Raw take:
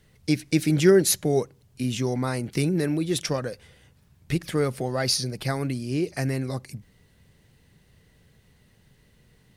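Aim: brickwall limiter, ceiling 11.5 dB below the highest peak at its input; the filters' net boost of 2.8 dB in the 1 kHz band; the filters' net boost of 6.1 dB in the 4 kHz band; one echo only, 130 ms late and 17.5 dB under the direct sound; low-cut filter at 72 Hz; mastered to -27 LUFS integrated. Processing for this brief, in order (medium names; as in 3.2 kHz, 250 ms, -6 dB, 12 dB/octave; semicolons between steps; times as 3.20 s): high-pass 72 Hz; peaking EQ 1 kHz +3.5 dB; peaking EQ 4 kHz +7.5 dB; peak limiter -16.5 dBFS; delay 130 ms -17.5 dB; trim +0.5 dB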